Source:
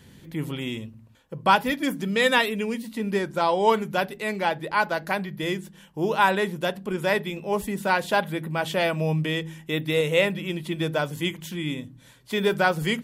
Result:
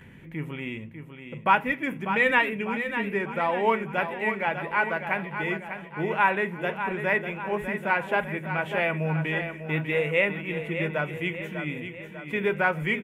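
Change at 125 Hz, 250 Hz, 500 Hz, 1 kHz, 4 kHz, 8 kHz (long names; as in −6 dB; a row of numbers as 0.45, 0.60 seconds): −2.5 dB, −3.5 dB, −3.0 dB, −2.0 dB, −9.5 dB, below −15 dB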